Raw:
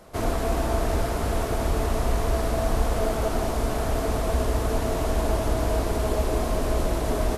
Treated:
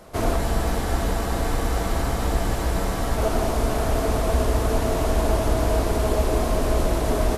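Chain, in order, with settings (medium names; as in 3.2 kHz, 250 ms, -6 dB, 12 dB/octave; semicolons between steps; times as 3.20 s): spectral freeze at 0.40 s, 2.78 s; trim +3 dB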